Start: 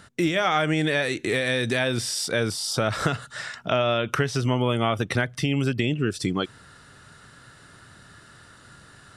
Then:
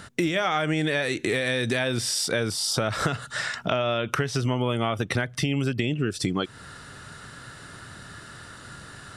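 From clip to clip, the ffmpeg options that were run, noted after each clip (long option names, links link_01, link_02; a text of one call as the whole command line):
ffmpeg -i in.wav -af "acompressor=threshold=-32dB:ratio=2.5,volume=6.5dB" out.wav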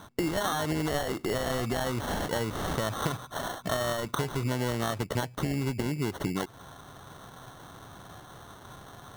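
ffmpeg -i in.wav -af "acrusher=samples=18:mix=1:aa=0.000001,volume=-4.5dB" out.wav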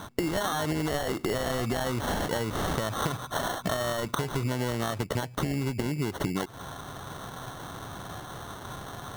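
ffmpeg -i in.wav -af "acompressor=threshold=-34dB:ratio=4,volume=7.5dB" out.wav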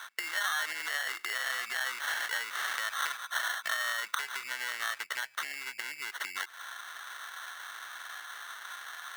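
ffmpeg -i in.wav -af "highpass=frequency=1700:width_type=q:width=2.5,volume=-1.5dB" out.wav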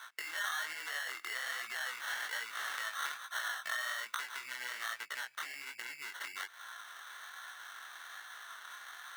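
ffmpeg -i in.wav -af "flanger=delay=17:depth=7.7:speed=1.2,volume=-2.5dB" out.wav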